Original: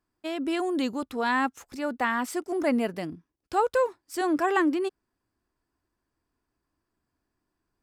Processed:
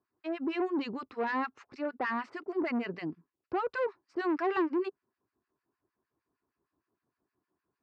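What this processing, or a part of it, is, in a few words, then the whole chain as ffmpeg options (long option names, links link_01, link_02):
guitar amplifier with harmonic tremolo: -filter_complex "[0:a]acrossover=split=1200[link_01][link_02];[link_01]aeval=exprs='val(0)*(1-1/2+1/2*cos(2*PI*6.5*n/s))':channel_layout=same[link_03];[link_02]aeval=exprs='val(0)*(1-1/2-1/2*cos(2*PI*6.5*n/s))':channel_layout=same[link_04];[link_03][link_04]amix=inputs=2:normalize=0,asoftclip=type=tanh:threshold=-29dB,highpass=110,equalizer=frequency=400:width_type=q:width=4:gain=6,equalizer=frequency=1100:width_type=q:width=4:gain=4,equalizer=frequency=3400:width_type=q:width=4:gain=-10,lowpass=frequency=4000:width=0.5412,lowpass=frequency=4000:width=1.3066,volume=1.5dB"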